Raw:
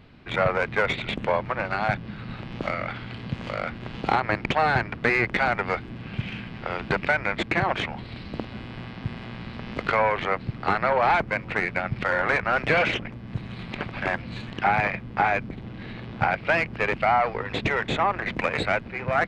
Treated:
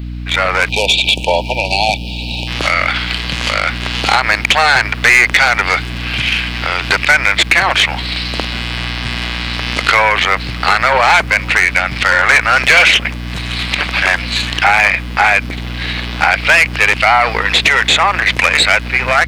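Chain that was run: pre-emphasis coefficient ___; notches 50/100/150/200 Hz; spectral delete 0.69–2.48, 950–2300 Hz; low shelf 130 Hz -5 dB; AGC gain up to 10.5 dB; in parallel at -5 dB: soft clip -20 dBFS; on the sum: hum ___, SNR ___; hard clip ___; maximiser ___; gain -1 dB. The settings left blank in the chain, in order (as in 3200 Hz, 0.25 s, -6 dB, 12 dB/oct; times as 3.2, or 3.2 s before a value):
0.97, 60 Hz, 14 dB, -15.5 dBFS, +19.5 dB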